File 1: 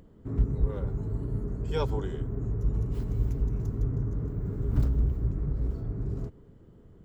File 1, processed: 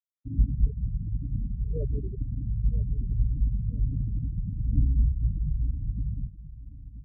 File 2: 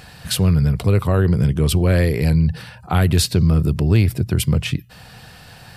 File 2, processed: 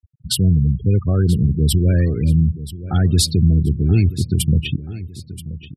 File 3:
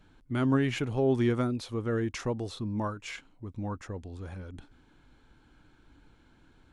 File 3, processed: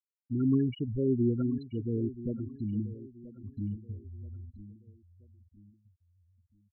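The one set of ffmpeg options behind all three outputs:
-af "equalizer=frequency=125:width_type=o:width=1:gain=-4,equalizer=frequency=500:width_type=o:width=1:gain=-8,equalizer=frequency=1000:width_type=o:width=1:gain=-10,equalizer=frequency=2000:width_type=o:width=1:gain=-5,afftfilt=real='re*gte(hypot(re,im),0.0631)':imag='im*gte(hypot(re,im),0.0631)':win_size=1024:overlap=0.75,aecho=1:1:980|1960|2940:0.168|0.0638|0.0242,volume=3.5dB"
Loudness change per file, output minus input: +1.5, +0.5, −1.0 LU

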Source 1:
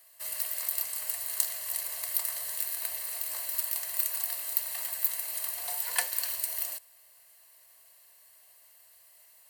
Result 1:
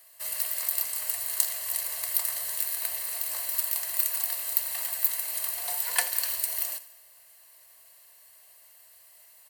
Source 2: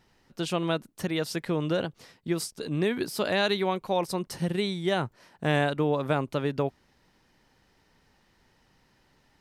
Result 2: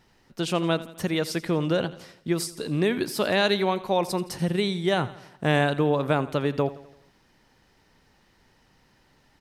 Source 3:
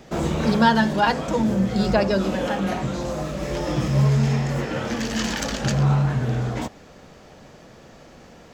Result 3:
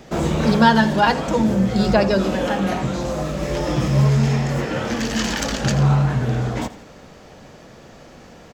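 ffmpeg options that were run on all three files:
-af "aecho=1:1:84|168|252|336|420:0.141|0.0735|0.0382|0.0199|0.0103,volume=3dB"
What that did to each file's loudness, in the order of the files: +3.0, +3.0, +3.0 LU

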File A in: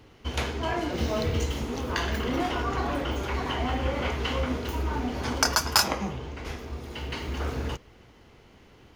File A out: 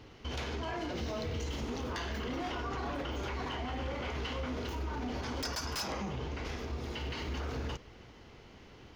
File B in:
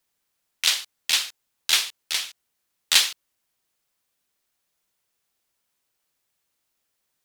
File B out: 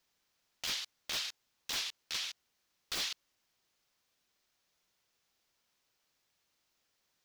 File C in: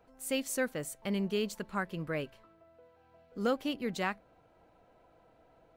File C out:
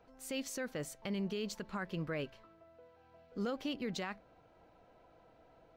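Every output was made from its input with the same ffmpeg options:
-af "aeval=exprs='0.112*(abs(mod(val(0)/0.112+3,4)-2)-1)':channel_layout=same,alimiter=level_in=5.5dB:limit=-24dB:level=0:latency=1:release=51,volume=-5.5dB,highshelf=frequency=7200:width_type=q:width=1.5:gain=-6.5"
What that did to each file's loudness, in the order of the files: −9.0, −15.5, −5.5 LU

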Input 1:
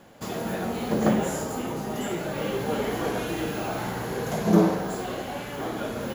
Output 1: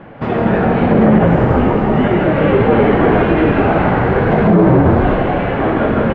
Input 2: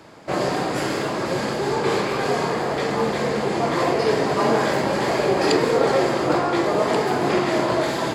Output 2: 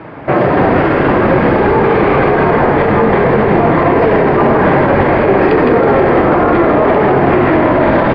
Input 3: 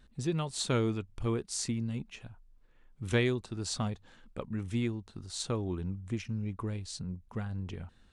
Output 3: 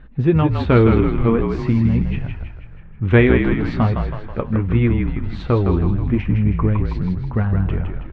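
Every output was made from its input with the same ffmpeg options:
-filter_complex "[0:a]lowpass=frequency=2400:width=0.5412,lowpass=frequency=2400:width=1.3066,lowshelf=frequency=200:gain=3,flanger=delay=6.1:depth=7.8:regen=-54:speed=0.42:shape=triangular,asplit=8[link_01][link_02][link_03][link_04][link_05][link_06][link_07][link_08];[link_02]adelay=161,afreqshift=-46,volume=-5dB[link_09];[link_03]adelay=322,afreqshift=-92,volume=-10.4dB[link_10];[link_04]adelay=483,afreqshift=-138,volume=-15.7dB[link_11];[link_05]adelay=644,afreqshift=-184,volume=-21.1dB[link_12];[link_06]adelay=805,afreqshift=-230,volume=-26.4dB[link_13];[link_07]adelay=966,afreqshift=-276,volume=-31.8dB[link_14];[link_08]adelay=1127,afreqshift=-322,volume=-37.1dB[link_15];[link_01][link_09][link_10][link_11][link_12][link_13][link_14][link_15]amix=inputs=8:normalize=0,alimiter=level_in=20dB:limit=-1dB:release=50:level=0:latency=1,volume=-1dB"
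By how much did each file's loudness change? +15.0, +11.0, +16.5 LU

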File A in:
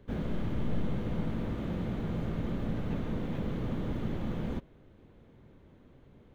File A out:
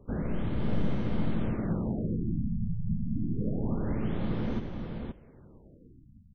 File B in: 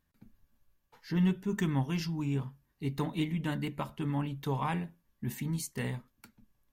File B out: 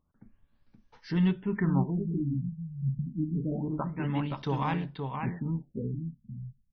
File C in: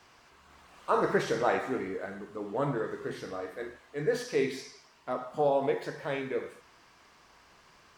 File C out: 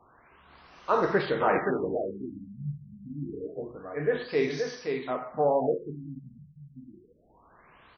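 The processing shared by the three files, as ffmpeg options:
-af "aecho=1:1:523:0.562,afftfilt=real='re*lt(b*sr/1024,210*pow(6500/210,0.5+0.5*sin(2*PI*0.27*pts/sr)))':imag='im*lt(b*sr/1024,210*pow(6500/210,0.5+0.5*sin(2*PI*0.27*pts/sr)))':win_size=1024:overlap=0.75,volume=2dB"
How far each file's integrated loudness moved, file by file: +2.5, +2.5, +2.5 LU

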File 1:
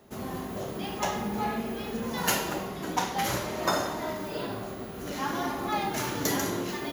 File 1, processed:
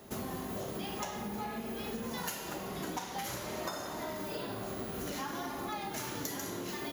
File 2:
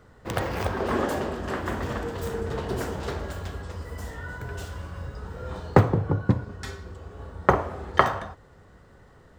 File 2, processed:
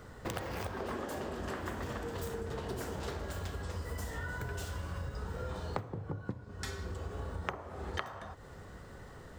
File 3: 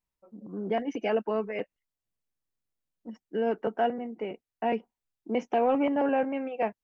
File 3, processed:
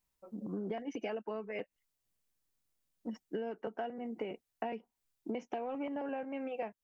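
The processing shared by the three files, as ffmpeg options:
-af "highshelf=frequency=4600:gain=5.5,acompressor=threshold=-38dB:ratio=16,volume=3dB"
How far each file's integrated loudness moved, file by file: −7.5, −12.0, −11.5 LU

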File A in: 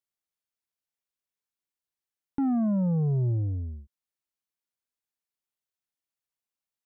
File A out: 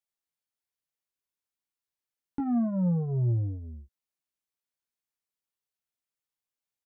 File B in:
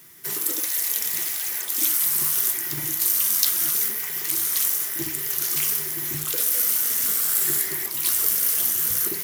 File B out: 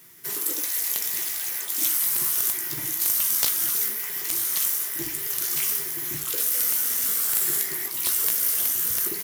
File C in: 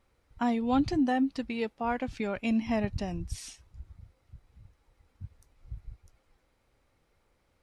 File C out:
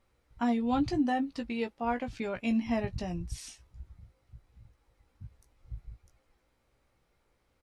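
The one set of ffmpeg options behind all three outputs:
-filter_complex "[0:a]asplit=2[link_01][link_02];[link_02]adelay=17,volume=-7dB[link_03];[link_01][link_03]amix=inputs=2:normalize=0,aeval=exprs='(mod(2*val(0)+1,2)-1)/2':channel_layout=same,volume=-2.5dB"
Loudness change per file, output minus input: −1.5, −1.5, −1.5 LU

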